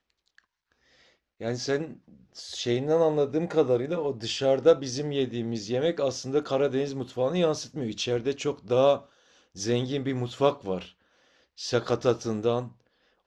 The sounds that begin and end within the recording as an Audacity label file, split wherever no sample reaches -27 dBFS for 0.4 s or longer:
1.430000	1.840000	sound
2.540000	8.960000	sound
9.610000	10.780000	sound
11.640000	12.620000	sound